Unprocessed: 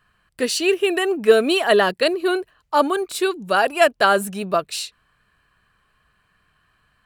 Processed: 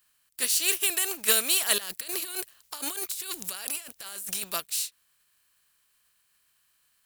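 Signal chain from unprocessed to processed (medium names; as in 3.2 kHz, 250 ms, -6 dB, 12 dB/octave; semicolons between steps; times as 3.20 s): spectral contrast reduction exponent 0.59; pre-emphasis filter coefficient 0.9; 1.78–4.44 s: compressor with a negative ratio -36 dBFS, ratio -1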